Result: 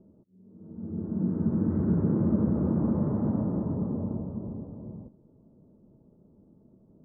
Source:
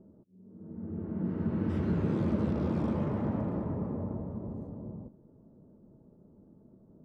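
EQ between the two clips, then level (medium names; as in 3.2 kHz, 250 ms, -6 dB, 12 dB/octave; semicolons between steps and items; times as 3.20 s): low-pass 1.5 kHz 24 dB/octave; distance through air 430 m; dynamic bell 210 Hz, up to +6 dB, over -41 dBFS, Q 0.71; 0.0 dB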